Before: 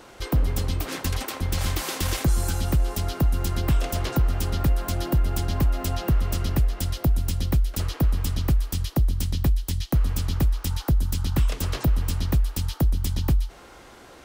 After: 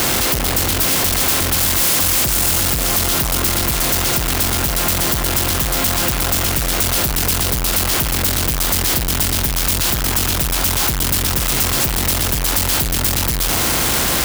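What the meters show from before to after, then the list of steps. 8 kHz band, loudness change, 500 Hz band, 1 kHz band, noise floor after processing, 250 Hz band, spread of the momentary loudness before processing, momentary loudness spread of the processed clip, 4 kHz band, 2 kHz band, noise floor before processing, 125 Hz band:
+19.5 dB, +10.5 dB, +9.5 dB, +12.5 dB, -19 dBFS, +5.5 dB, 3 LU, 3 LU, +16.5 dB, +16.0 dB, -47 dBFS, +0.5 dB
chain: per-bin compression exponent 0.4; in parallel at +0.5 dB: limiter -18 dBFS, peak gain reduction 11 dB; on the sum: tilt +2 dB/oct; on a send: diffused feedback echo 0.713 s, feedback 40%, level -14 dB; on the sum: Schmitt trigger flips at -29.5 dBFS; high shelf 8900 Hz +9.5 dB

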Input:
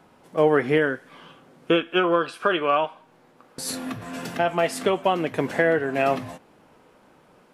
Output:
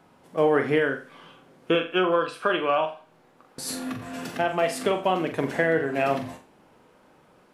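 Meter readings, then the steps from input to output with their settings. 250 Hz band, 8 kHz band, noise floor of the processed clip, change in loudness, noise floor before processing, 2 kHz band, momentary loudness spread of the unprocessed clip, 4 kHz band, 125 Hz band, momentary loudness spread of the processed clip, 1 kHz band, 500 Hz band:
-2.0 dB, -2.0 dB, -58 dBFS, -2.0 dB, -57 dBFS, -1.5 dB, 12 LU, -2.0 dB, -2.0 dB, 12 LU, -2.0 dB, -1.5 dB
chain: flutter echo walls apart 7.4 m, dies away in 0.33 s; gain -2.5 dB

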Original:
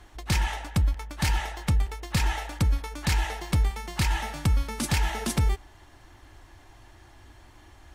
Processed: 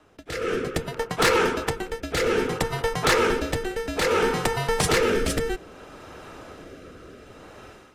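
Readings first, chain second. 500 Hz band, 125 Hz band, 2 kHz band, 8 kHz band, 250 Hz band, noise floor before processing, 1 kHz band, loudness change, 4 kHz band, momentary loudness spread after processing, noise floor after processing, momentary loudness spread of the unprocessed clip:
+18.5 dB, -6.0 dB, +7.5 dB, +3.5 dB, +4.5 dB, -53 dBFS, +7.0 dB, +4.0 dB, +5.0 dB, 22 LU, -49 dBFS, 3 LU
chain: Bessel high-pass 550 Hz, order 6; high shelf 2400 Hz -12 dB; AGC gain up to 14 dB; soft clip -17.5 dBFS, distortion -15 dB; frequency shift -420 Hz; rotary speaker horn 0.6 Hz; gain +6 dB

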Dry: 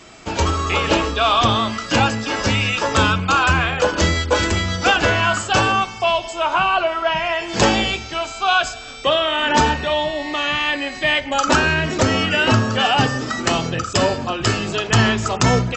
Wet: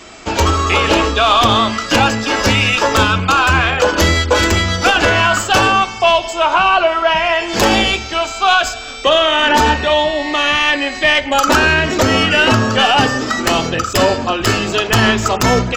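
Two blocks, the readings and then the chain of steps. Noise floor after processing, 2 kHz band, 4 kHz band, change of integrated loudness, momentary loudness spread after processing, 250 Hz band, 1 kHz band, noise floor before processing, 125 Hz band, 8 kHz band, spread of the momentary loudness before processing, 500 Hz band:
-26 dBFS, +5.5 dB, +5.5 dB, +5.0 dB, 4 LU, +4.0 dB, +5.0 dB, -33 dBFS, +2.0 dB, +4.5 dB, 5 LU, +5.5 dB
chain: tracing distortion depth 0.05 ms; bell 140 Hz -9 dB 0.62 oct; limiter -8.5 dBFS, peak gain reduction 5.5 dB; gain +6.5 dB

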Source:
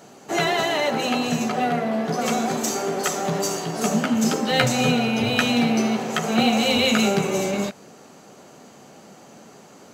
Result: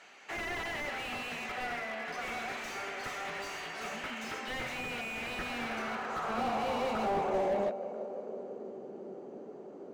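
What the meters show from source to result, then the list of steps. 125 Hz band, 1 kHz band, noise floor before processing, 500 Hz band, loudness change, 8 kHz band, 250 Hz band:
-21.0 dB, -10.5 dB, -47 dBFS, -11.5 dB, -14.5 dB, -21.5 dB, -20.5 dB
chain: in parallel at -3 dB: compressor, threshold -32 dBFS, peak gain reduction 17 dB; on the sum: tape echo 0.33 s, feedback 82%, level -15 dB, low-pass 1800 Hz; band-pass sweep 2200 Hz -> 390 Hz, 5.04–8.81; slew limiter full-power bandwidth 27 Hz

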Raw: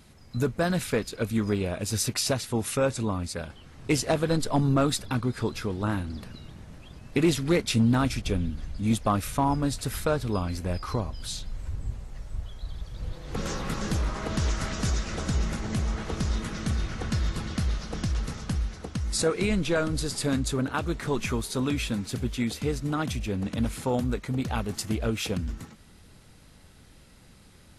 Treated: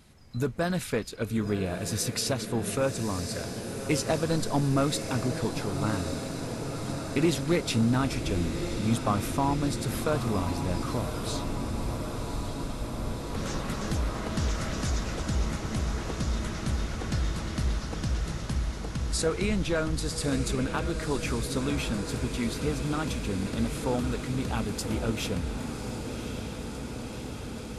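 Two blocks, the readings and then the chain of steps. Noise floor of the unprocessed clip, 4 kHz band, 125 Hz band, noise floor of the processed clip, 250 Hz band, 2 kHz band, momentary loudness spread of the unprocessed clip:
-53 dBFS, -1.0 dB, -1.0 dB, -38 dBFS, -1.0 dB, -1.0 dB, 12 LU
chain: diffused feedback echo 1.127 s, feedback 78%, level -8 dB; gain -2.5 dB

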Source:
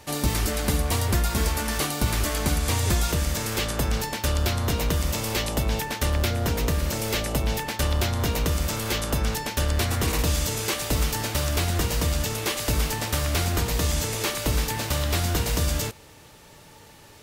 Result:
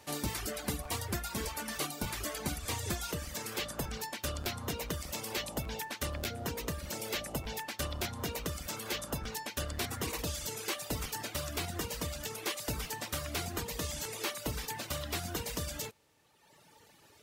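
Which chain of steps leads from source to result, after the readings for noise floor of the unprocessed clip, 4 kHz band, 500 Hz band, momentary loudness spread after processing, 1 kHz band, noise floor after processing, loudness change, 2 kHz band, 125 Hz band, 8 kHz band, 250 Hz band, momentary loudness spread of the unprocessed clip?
-49 dBFS, -10.0 dB, -10.5 dB, 2 LU, -10.5 dB, -62 dBFS, -11.5 dB, -10.0 dB, -16.0 dB, -10.0 dB, -11.5 dB, 2 LU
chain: HPF 140 Hz 6 dB/oct; reverb removal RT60 1.5 s; crackling interface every 0.60 s, samples 512, repeat, from 0.83; gain -7.5 dB

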